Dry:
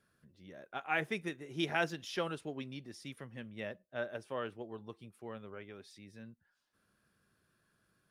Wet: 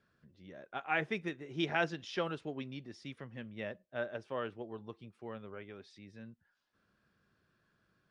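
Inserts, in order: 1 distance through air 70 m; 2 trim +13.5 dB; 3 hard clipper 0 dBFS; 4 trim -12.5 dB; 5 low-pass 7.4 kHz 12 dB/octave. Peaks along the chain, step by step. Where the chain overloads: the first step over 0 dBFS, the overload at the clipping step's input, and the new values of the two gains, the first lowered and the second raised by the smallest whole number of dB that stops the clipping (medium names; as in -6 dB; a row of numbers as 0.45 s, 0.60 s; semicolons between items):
-18.5 dBFS, -5.0 dBFS, -5.0 dBFS, -17.5 dBFS, -17.5 dBFS; nothing clips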